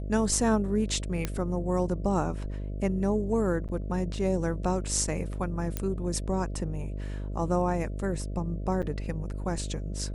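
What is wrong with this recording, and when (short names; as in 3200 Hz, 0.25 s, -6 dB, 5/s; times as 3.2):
buzz 50 Hz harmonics 13 -34 dBFS
1.25 pop -14 dBFS
3.68–3.69 gap 8.3 ms
5.77 pop -15 dBFS
8.82–8.83 gap 7.2 ms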